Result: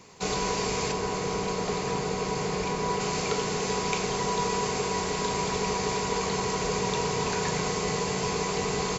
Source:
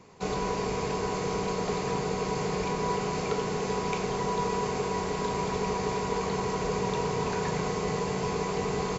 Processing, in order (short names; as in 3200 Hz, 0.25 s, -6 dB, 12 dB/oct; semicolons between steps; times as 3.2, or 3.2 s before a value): high shelf 2300 Hz +11 dB, from 0.92 s +4.5 dB, from 3 s +9.5 dB